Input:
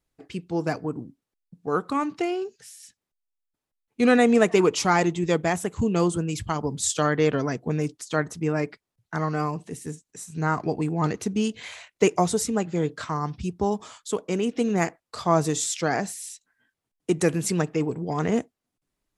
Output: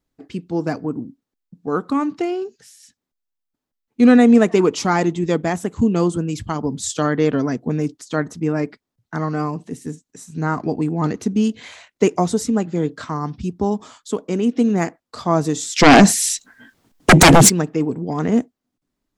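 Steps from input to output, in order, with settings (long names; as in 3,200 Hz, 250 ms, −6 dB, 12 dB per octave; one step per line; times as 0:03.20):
graphic EQ with 15 bands 250 Hz +8 dB, 2,500 Hz −3 dB, 10,000 Hz −6 dB
0:15.76–0:17.48: sine wavefolder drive 14 dB → 19 dB, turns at −6 dBFS
level +2 dB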